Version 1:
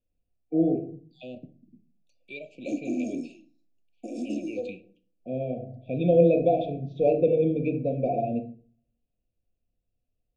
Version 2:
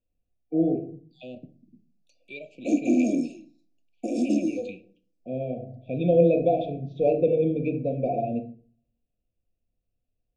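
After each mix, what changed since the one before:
background +8.0 dB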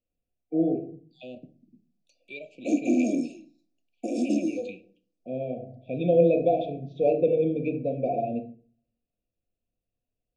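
master: add low shelf 130 Hz -8.5 dB

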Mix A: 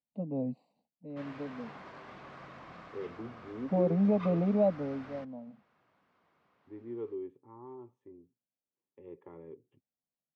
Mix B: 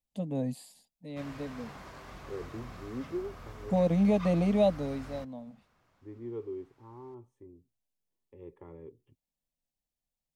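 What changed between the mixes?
first voice: remove running mean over 26 samples; second voice: entry -0.65 s; master: remove BPF 160–3300 Hz

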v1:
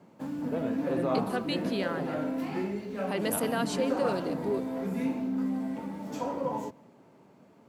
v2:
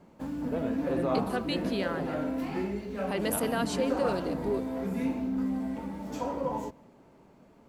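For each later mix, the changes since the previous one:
master: remove HPF 100 Hz 24 dB/oct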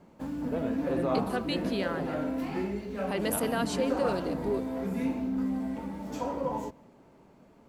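none

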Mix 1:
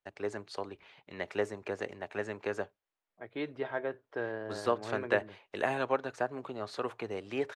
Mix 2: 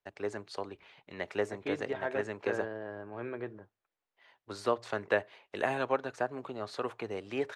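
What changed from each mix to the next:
second voice: entry -1.70 s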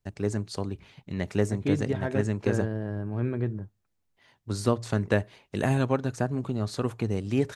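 master: remove three-band isolator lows -22 dB, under 400 Hz, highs -14 dB, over 3800 Hz

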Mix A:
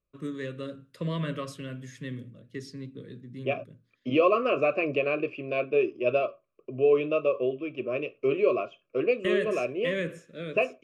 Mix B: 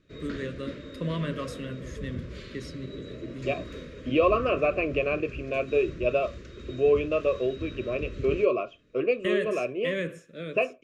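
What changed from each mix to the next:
background: unmuted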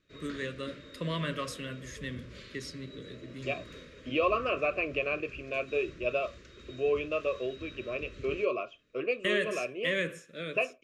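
second voice -4.5 dB; background -6.5 dB; master: add tilt shelf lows -4.5 dB, about 820 Hz

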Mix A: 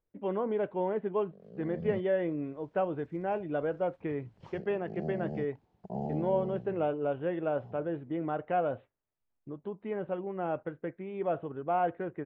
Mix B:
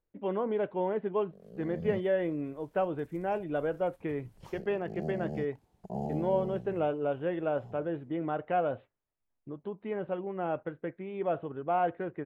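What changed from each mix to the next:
background: remove HPF 74 Hz; master: remove air absorption 150 m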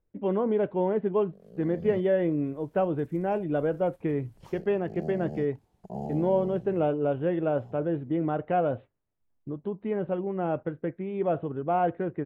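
speech: add low shelf 450 Hz +9.5 dB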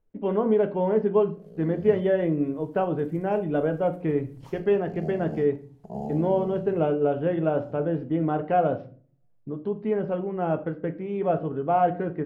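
speech: remove Chebyshev low-pass 3800 Hz, order 5; reverb: on, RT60 0.45 s

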